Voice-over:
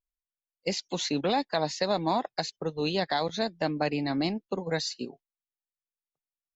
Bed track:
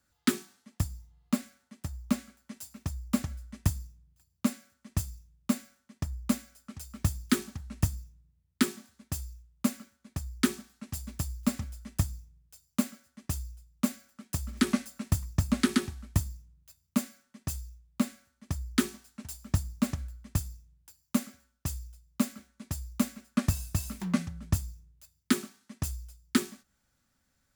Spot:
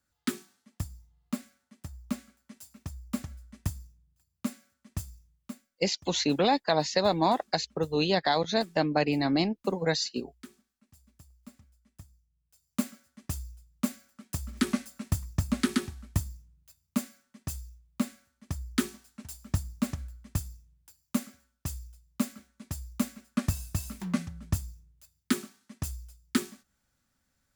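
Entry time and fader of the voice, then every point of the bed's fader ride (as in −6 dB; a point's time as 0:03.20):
5.15 s, +2.5 dB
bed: 0:05.32 −5 dB
0:05.69 −22 dB
0:12.19 −22 dB
0:12.80 −1.5 dB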